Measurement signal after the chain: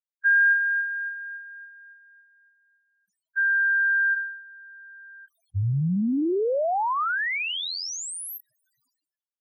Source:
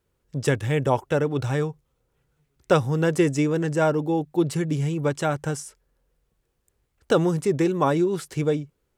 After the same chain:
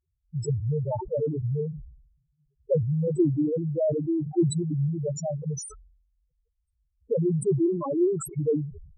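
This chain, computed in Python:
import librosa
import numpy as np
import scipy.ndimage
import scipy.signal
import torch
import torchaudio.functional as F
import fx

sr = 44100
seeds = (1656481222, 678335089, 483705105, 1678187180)

y = fx.spec_topn(x, sr, count=2)
y = fx.sustainer(y, sr, db_per_s=75.0)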